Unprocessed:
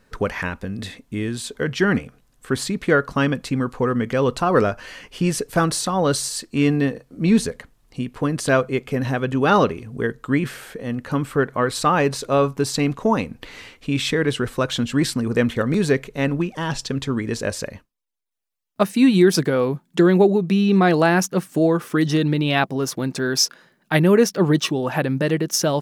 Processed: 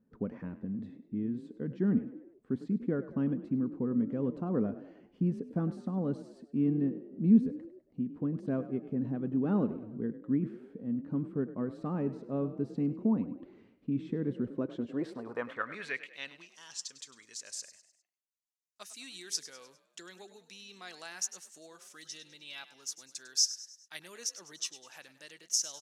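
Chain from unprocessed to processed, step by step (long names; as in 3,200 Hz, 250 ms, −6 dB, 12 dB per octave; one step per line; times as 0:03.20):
0:21.95–0:22.98: notch comb filter 360 Hz
band-pass filter sweep 220 Hz → 6,600 Hz, 0:14.46–0:16.60
echo with shifted repeats 101 ms, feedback 47%, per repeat +36 Hz, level −14.5 dB
level −5 dB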